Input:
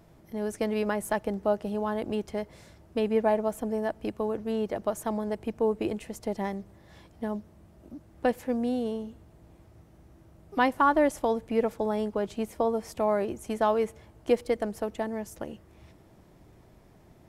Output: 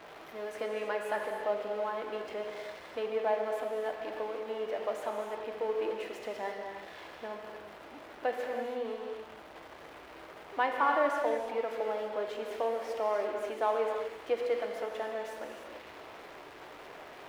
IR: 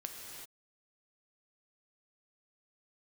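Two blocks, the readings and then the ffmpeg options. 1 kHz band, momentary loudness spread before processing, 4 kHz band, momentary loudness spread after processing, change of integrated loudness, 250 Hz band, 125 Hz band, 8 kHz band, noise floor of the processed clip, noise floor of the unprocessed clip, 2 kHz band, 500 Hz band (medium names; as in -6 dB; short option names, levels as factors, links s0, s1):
-3.0 dB, 12 LU, -1.5 dB, 17 LU, -5.0 dB, -15.5 dB, under -15 dB, no reading, -50 dBFS, -57 dBFS, -1.5 dB, -4.0 dB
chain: -filter_complex "[0:a]aeval=exprs='val(0)+0.5*0.02*sgn(val(0))':c=same,acrossover=split=390 3800:gain=0.0631 1 0.141[s0][s1][s2];[s0][s1][s2]amix=inputs=3:normalize=0[s3];[1:a]atrim=start_sample=2205,afade=t=out:st=0.39:d=0.01,atrim=end_sample=17640[s4];[s3][s4]afir=irnorm=-1:irlink=0,volume=0.841"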